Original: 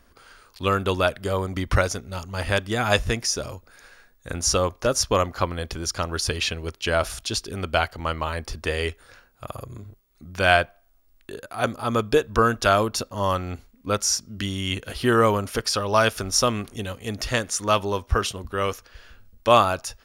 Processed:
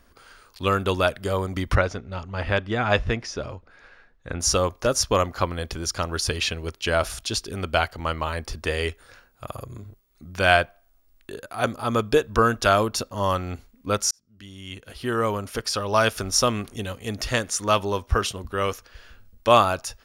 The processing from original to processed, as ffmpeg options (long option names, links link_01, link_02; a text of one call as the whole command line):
ffmpeg -i in.wav -filter_complex "[0:a]asettb=1/sr,asplit=3[link_01][link_02][link_03];[link_01]atrim=end=1.754[link_04];[link_02]atrim=start=1.75:end=4.4,asetpts=PTS-STARTPTS,afade=type=in:duration=0.004:curve=qsin,afade=type=out:start_time=2.646:duration=0.004:curve=qsin,lowpass=3100[link_05];[link_03]atrim=start=4.396[link_06];[link_04][link_05]acrossfade=duration=0.004:curve1=hsin:curve2=qsin[link_07];[link_07][link_06]acrossfade=duration=0.004:curve1=qsin:curve2=hsin,asplit=2[link_08][link_09];[link_08]atrim=end=14.11,asetpts=PTS-STARTPTS,afade=type=out:start_time=14.106:duration=0.004:curve=hsin[link_10];[link_09]atrim=start=14.11,asetpts=PTS-STARTPTS,afade=type=in:duration=2.09[link_11];[link_10][link_11]concat=n=2:v=0:a=1" out.wav